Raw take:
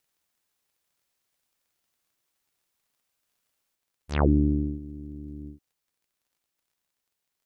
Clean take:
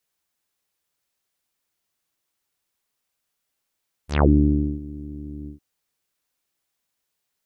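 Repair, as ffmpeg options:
-af "adeclick=t=4,asetnsamples=n=441:p=0,asendcmd='3.75 volume volume 4.5dB',volume=1"

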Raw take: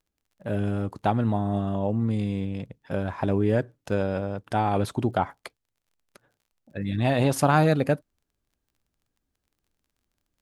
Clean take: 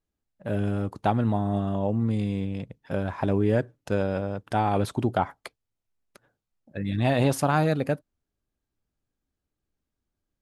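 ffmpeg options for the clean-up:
-af "adeclick=t=4,asetnsamples=n=441:p=0,asendcmd='7.36 volume volume -3dB',volume=1"

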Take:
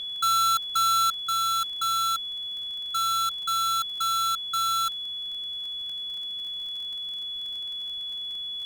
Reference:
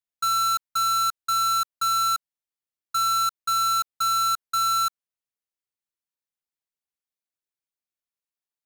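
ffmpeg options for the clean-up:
-af "adeclick=t=4,bandreject=f=3400:w=30,agate=range=0.0891:threshold=0.0501,asetnsamples=n=441:p=0,asendcmd='1.23 volume volume 3.5dB',volume=1"

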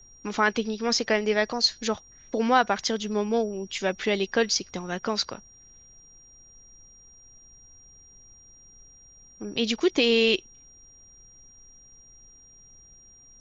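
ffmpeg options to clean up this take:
-af "bandreject=f=5700:w=30,agate=range=0.0891:threshold=0.00562"

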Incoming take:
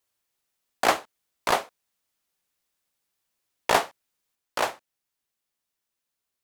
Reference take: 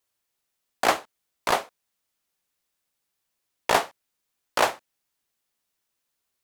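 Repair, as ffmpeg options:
-af "asetnsamples=n=441:p=0,asendcmd='4.35 volume volume 4.5dB',volume=1"

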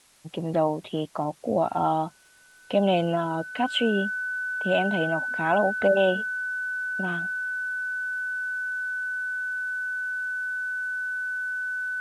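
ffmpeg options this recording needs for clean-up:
-af "adeclick=t=4,bandreject=f=1500:w=30,agate=range=0.0891:threshold=0.02"

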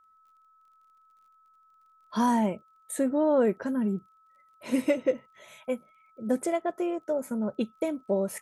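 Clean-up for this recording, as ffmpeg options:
-af "adeclick=t=4,bandreject=f=1300:w=30"

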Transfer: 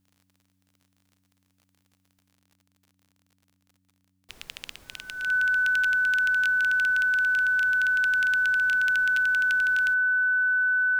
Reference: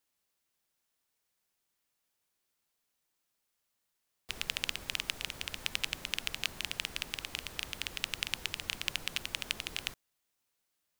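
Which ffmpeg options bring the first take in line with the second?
-af "adeclick=t=4,bandreject=f=93.9:t=h:w=4,bandreject=f=187.8:t=h:w=4,bandreject=f=281.7:t=h:w=4,bandreject=f=1500:w=30,asetnsamples=n=441:p=0,asendcmd='2.32 volume volume 5.5dB',volume=1"

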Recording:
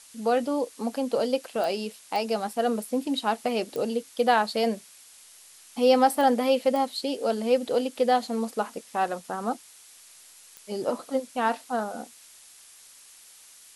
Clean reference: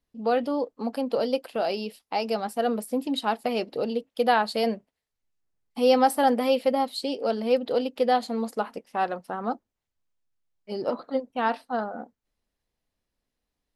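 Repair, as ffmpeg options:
-af "adeclick=t=4,afftdn=nr=30:nf=-52"

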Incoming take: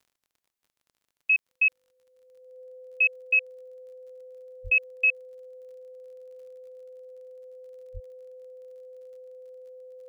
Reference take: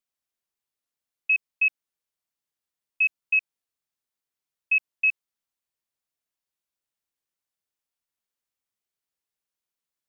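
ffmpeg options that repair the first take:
-filter_complex "[0:a]adeclick=t=4,bandreject=f=510:w=30,asplit=3[s0][s1][s2];[s0]afade=t=out:st=4.63:d=0.02[s3];[s1]highpass=f=140:w=0.5412,highpass=f=140:w=1.3066,afade=t=in:st=4.63:d=0.02,afade=t=out:st=4.75:d=0.02[s4];[s2]afade=t=in:st=4.75:d=0.02[s5];[s3][s4][s5]amix=inputs=3:normalize=0,asplit=3[s6][s7][s8];[s6]afade=t=out:st=7.93:d=0.02[s9];[s7]highpass=f=140:w=0.5412,highpass=f=140:w=1.3066,afade=t=in:st=7.93:d=0.02,afade=t=out:st=8.05:d=0.02[s10];[s8]afade=t=in:st=8.05:d=0.02[s11];[s9][s10][s11]amix=inputs=3:normalize=0"

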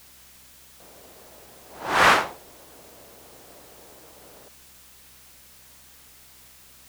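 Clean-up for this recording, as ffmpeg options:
-af "bandreject=f=64.2:t=h:w=4,bandreject=f=128.4:t=h:w=4,bandreject=f=192.6:t=h:w=4,bandreject=f=256.8:t=h:w=4,afwtdn=0.0028"

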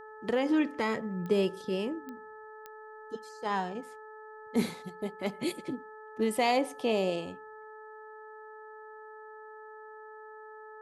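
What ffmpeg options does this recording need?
-af "adeclick=t=4,bandreject=f=432.6:t=h:w=4,bandreject=f=865.2:t=h:w=4,bandreject=f=1297.8:t=h:w=4,bandreject=f=1730.4:t=h:w=4"

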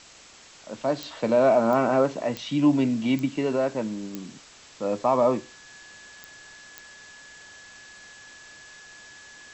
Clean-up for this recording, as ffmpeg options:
-af "adeclick=t=4,bandreject=f=1700:w=30,afwtdn=0.005"

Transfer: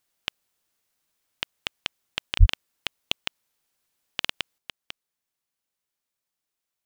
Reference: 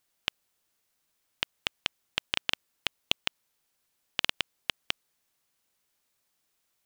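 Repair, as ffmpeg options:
-filter_complex "[0:a]asplit=3[s0][s1][s2];[s0]afade=t=out:st=2.39:d=0.02[s3];[s1]highpass=f=140:w=0.5412,highpass=f=140:w=1.3066,afade=t=in:st=2.39:d=0.02,afade=t=out:st=2.51:d=0.02[s4];[s2]afade=t=in:st=2.51:d=0.02[s5];[s3][s4][s5]amix=inputs=3:normalize=0,asetnsamples=n=441:p=0,asendcmd='4.58 volume volume 9dB',volume=1"

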